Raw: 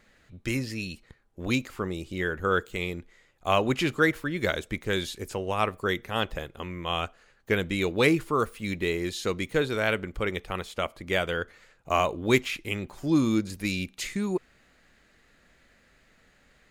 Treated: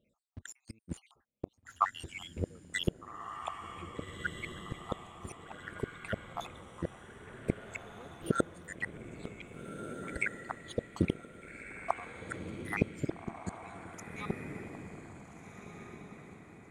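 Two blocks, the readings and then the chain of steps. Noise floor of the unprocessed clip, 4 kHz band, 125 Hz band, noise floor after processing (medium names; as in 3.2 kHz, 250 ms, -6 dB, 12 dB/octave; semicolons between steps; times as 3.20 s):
-63 dBFS, -14.0 dB, -8.0 dB, -74 dBFS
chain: random holes in the spectrogram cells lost 75%; high-pass 60 Hz 12 dB/octave; gate with hold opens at -56 dBFS; resonant high shelf 6.6 kHz +11.5 dB, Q 3; inverted gate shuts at -26 dBFS, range -33 dB; in parallel at -9 dB: word length cut 8-bit, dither none; on the sum: square tremolo 1.1 Hz, depth 60%, duty 25%; distance through air 150 m; on a send: echo that smears into a reverb 1637 ms, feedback 43%, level -7.5 dB; on the sum: trim +12 dB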